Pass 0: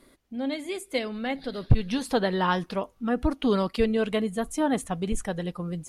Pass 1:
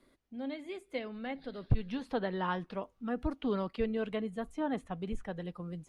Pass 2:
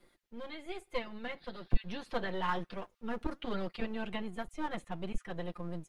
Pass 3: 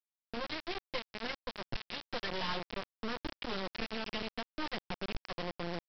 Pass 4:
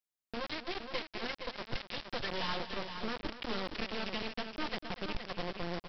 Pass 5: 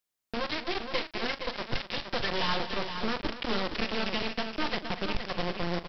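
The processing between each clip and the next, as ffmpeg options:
-filter_complex "[0:a]highshelf=f=8.1k:g=-11,acrossover=split=140|1100|3700[a][b][c][d];[d]acompressor=threshold=-56dB:ratio=6[e];[a][b][c][e]amix=inputs=4:normalize=0,volume=-9dB"
-filter_complex "[0:a]aecho=1:1:5.7:0.9,flanger=delay=1.9:depth=2.6:regen=87:speed=1.1:shape=sinusoidal,acrossover=split=1200[a][b];[a]aeval=exprs='max(val(0),0)':c=same[c];[c][b]amix=inputs=2:normalize=0,volume=4.5dB"
-filter_complex "[0:a]acrossover=split=620|2000[a][b][c];[a]acompressor=threshold=-46dB:ratio=4[d];[b]acompressor=threshold=-54dB:ratio=4[e];[c]acompressor=threshold=-48dB:ratio=4[f];[d][e][f]amix=inputs=3:normalize=0,aeval=exprs='val(0)+0.000282*(sin(2*PI*60*n/s)+sin(2*PI*2*60*n/s)/2+sin(2*PI*3*60*n/s)/3+sin(2*PI*4*60*n/s)/4+sin(2*PI*5*60*n/s)/5)':c=same,aresample=11025,acrusher=bits=6:mix=0:aa=0.000001,aresample=44100,volume=6.5dB"
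-af "aecho=1:1:244|468:0.237|0.422"
-filter_complex "[0:a]asplit=2[a][b];[b]adelay=40,volume=-13dB[c];[a][c]amix=inputs=2:normalize=0,volume=6.5dB"

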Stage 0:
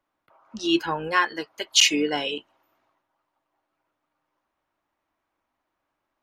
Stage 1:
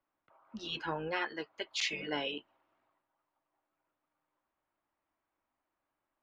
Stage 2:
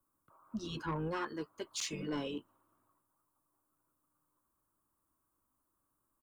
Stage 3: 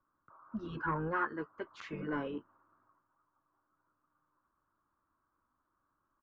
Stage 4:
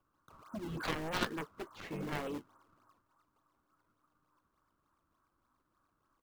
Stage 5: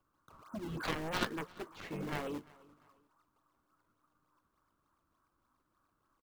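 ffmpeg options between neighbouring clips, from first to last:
-af "afftfilt=real='re*lt(hypot(re,im),0.355)':imag='im*lt(hypot(re,im),0.355)':win_size=1024:overlap=0.75,lowpass=3.4k,volume=-7dB"
-af "firequalizer=gain_entry='entry(120,0);entry(750,-17);entry(1100,-4);entry(2000,-22);entry(8800,4)':delay=0.05:min_phase=1,asoftclip=type=tanh:threshold=-38dB,volume=9.5dB"
-af "lowpass=f=1.5k:t=q:w=2.8"
-filter_complex "[0:a]aeval=exprs='0.075*(cos(1*acos(clip(val(0)/0.075,-1,1)))-cos(1*PI/2))+0.0266*(cos(3*acos(clip(val(0)/0.075,-1,1)))-cos(3*PI/2))+0.00841*(cos(7*acos(clip(val(0)/0.075,-1,1)))-cos(7*PI/2))':c=same,asplit=2[a][b];[b]acrusher=samples=21:mix=1:aa=0.000001:lfo=1:lforange=33.6:lforate=3.4,volume=-3dB[c];[a][c]amix=inputs=2:normalize=0,volume=1dB"
-af "aecho=1:1:346|692:0.0668|0.0214"

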